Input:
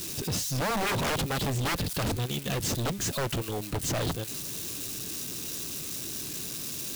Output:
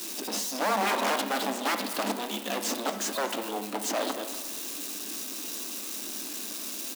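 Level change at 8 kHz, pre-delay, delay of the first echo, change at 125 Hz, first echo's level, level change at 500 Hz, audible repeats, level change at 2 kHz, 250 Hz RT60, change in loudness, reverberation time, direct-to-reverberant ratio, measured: −0.5 dB, 7 ms, 236 ms, below −15 dB, −17.5 dB, +1.5 dB, 1, +1.5 dB, 1.2 s, 0.0 dB, 1.1 s, 6.5 dB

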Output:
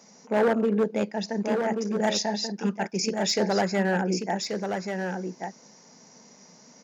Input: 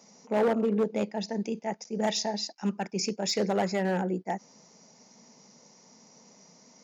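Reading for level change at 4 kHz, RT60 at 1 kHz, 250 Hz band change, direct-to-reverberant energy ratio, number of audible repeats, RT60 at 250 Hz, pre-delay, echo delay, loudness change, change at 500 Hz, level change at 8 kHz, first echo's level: +3.5 dB, no reverb audible, +3.5 dB, no reverb audible, 1, no reverb audible, no reverb audible, 1,134 ms, +3.0 dB, +3.5 dB, can't be measured, −5.5 dB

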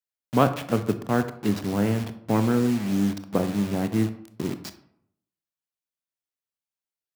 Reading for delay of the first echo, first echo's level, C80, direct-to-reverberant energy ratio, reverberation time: no echo audible, no echo audible, 16.0 dB, 10.0 dB, 0.75 s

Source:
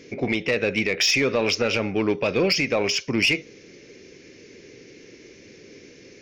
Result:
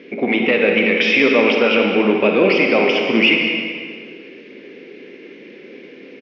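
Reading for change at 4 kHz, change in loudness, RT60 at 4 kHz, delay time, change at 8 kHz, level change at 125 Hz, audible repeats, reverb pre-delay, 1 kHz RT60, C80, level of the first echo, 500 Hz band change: +4.0 dB, +7.0 dB, 1.7 s, 197 ms, below −15 dB, 0.0 dB, 1, 39 ms, 1.9 s, 3.0 dB, −10.0 dB, +8.5 dB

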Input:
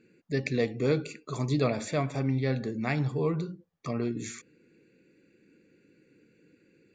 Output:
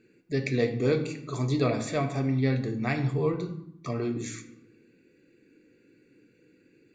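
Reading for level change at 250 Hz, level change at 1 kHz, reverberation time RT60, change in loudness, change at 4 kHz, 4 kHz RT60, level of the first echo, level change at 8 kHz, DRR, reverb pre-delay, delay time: +2.0 dB, +1.5 dB, 0.80 s, +1.5 dB, +1.0 dB, 0.55 s, no echo audible, +1.0 dB, 5.5 dB, 3 ms, no echo audible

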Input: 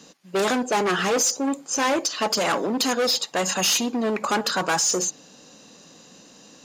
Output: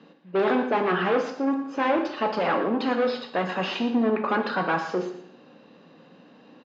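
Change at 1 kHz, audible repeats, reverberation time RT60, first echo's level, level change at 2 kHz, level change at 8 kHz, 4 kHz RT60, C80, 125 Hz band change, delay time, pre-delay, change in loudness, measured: −1.0 dB, 1, 0.70 s, −12.5 dB, −2.0 dB, below −30 dB, 0.70 s, 9.5 dB, 0.0 dB, 114 ms, 12 ms, −3.0 dB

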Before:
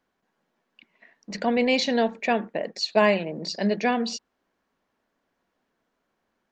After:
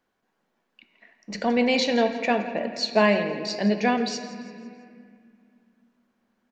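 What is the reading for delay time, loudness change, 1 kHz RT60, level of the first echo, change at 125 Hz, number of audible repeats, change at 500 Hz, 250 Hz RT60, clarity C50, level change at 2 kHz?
167 ms, +1.0 dB, 2.1 s, −17.0 dB, +2.0 dB, 4, +0.5 dB, 3.3 s, 8.5 dB, +1.0 dB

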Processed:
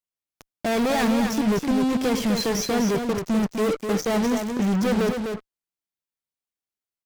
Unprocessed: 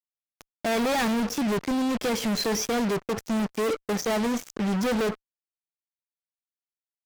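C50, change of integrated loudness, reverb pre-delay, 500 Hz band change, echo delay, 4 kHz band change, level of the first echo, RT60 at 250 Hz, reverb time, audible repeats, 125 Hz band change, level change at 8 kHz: no reverb audible, +3.5 dB, no reverb audible, +3.0 dB, 252 ms, +1.0 dB, −6.0 dB, no reverb audible, no reverb audible, 1, +5.0 dB, +1.0 dB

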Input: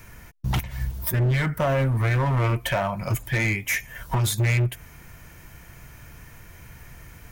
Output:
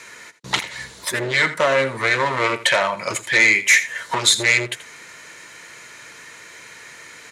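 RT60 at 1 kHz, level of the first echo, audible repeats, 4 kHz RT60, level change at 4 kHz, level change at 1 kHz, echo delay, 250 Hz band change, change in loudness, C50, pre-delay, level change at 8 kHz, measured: no reverb audible, −15.0 dB, 1, no reverb audible, +14.0 dB, +6.5 dB, 82 ms, −1.5 dB, +6.5 dB, no reverb audible, no reverb audible, +11.0 dB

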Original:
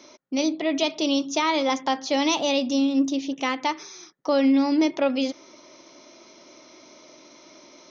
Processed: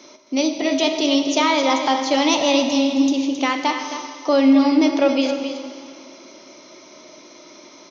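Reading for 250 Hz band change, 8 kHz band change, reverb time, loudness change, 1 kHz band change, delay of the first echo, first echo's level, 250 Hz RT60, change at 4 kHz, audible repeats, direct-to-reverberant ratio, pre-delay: +5.0 dB, can't be measured, 2.3 s, +5.0 dB, +5.5 dB, 267 ms, −9.0 dB, 2.4 s, +5.5 dB, 1, 4.0 dB, 6 ms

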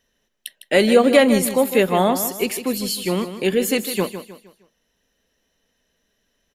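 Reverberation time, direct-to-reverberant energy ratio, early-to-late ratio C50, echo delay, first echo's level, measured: no reverb audible, no reverb audible, no reverb audible, 155 ms, −11.0 dB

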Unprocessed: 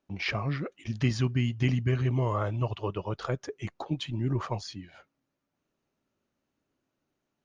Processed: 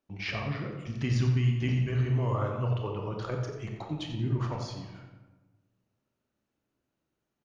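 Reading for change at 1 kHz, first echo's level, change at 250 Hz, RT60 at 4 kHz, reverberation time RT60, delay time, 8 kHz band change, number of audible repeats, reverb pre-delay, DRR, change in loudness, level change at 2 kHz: −2.0 dB, −9.5 dB, −2.0 dB, 0.70 s, 1.2 s, 90 ms, can't be measured, 1, 23 ms, 1.5 dB, 0.0 dB, −2.5 dB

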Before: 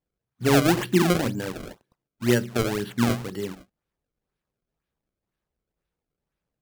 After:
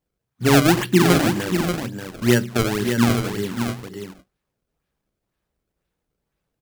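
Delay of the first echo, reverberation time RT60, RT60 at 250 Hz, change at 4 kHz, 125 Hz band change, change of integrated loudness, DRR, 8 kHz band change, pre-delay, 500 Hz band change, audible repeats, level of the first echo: 524 ms, no reverb audible, no reverb audible, +6.0 dB, +5.5 dB, +4.5 dB, no reverb audible, +6.0 dB, no reverb audible, +3.5 dB, 2, −19.0 dB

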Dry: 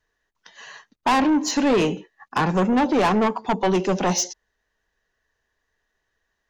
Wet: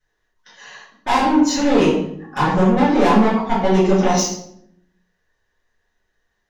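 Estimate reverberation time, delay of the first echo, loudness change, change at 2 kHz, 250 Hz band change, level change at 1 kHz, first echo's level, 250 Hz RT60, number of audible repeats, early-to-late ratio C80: 0.65 s, no echo audible, +4.5 dB, +2.5 dB, +5.0 dB, +4.0 dB, no echo audible, 1.0 s, no echo audible, 6.5 dB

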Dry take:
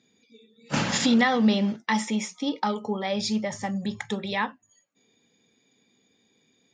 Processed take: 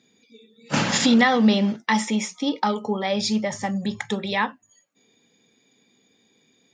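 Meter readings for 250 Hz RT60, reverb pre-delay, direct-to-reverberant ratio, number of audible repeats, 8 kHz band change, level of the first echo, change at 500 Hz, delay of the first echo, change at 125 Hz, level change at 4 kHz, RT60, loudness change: no reverb audible, no reverb audible, no reverb audible, no echo audible, +4.0 dB, no echo audible, +4.0 dB, no echo audible, +3.0 dB, +4.0 dB, no reverb audible, +3.5 dB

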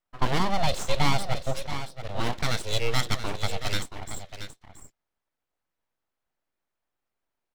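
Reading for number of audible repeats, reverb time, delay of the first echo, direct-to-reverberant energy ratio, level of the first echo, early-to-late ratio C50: 1, no reverb audible, 678 ms, no reverb audible, −10.5 dB, no reverb audible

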